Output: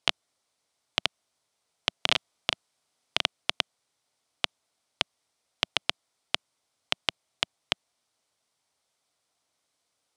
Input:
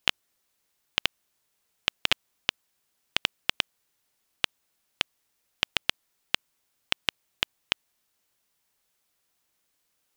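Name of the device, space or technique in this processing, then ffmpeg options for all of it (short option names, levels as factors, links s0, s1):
car door speaker: -filter_complex "[0:a]asettb=1/sr,asplit=3[s0][s1][s2];[s0]atrim=end=1.974[s3];[s1]atrim=start=1.97:end=3.22,asetpts=PTS-STARTPTS,afade=t=in:d=0.004:c=qsin,afade=t=out:st=1.246:d=0.004:c=qsin,asplit=2[s4][s5];[s5]adelay=37,volume=0.631[s6];[s4][s6]amix=inputs=2:normalize=0,atrim=end_sample=55125[s7];[s2]atrim=start=3.216[s8];[s3][s7]acrossfade=d=0.004:c1=hsin:c2=qsin[s9];[s9][s8]acrossfade=d=0.004:c1=qsin:c2=hsin,highpass=92,equalizer=f=190:t=q:w=4:g=-7,equalizer=f=360:t=q:w=4:g=-4,equalizer=f=670:t=q:w=4:g=4,equalizer=f=1700:t=q:w=4:g=-6,equalizer=f=2700:t=q:w=4:g=-5,equalizer=f=7000:t=q:w=4:g=-4,lowpass=f=9300:w=0.5412,lowpass=f=9300:w=1.3066,volume=1.19"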